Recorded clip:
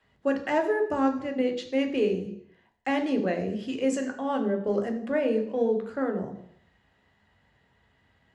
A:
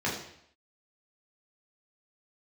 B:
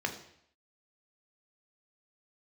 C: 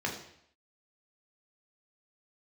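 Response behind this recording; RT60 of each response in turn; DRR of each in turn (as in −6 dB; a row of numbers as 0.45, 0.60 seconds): B; 0.70, 0.70, 0.70 seconds; −6.0, 4.0, −1.0 decibels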